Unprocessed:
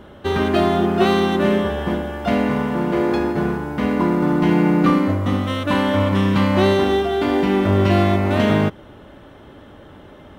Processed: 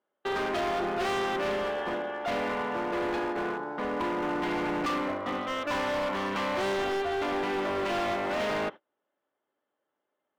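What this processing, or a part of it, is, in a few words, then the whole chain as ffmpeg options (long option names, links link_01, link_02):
walkie-talkie: -filter_complex "[0:a]asettb=1/sr,asplit=3[link_01][link_02][link_03];[link_01]atrim=end=3.574[link_04];[link_02]atrim=start=3.57:end=4.04,asetpts=PTS-STARTPTS,afade=type=in:duration=0.004:curve=qsin,afade=type=out:start_time=0.466:duration=0.004:curve=qsin,equalizer=frequency=2500:width_type=o:width=0.87:gain=-9[link_05];[link_03]atrim=start=4.036[link_06];[link_04][link_05]acrossfade=duration=0.004:curve1=hsin:curve2=qsin[link_07];[link_07][link_06]acrossfade=duration=0.004:curve1=qsin:curve2=hsin,highpass=480,lowpass=2900,asoftclip=type=hard:threshold=-24dB,agate=range=-33dB:threshold=-36dB:ratio=16:detection=peak,volume=-3dB"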